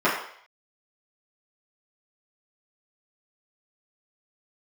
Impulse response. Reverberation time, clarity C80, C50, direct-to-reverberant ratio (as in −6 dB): 0.60 s, 7.5 dB, 4.5 dB, −11.0 dB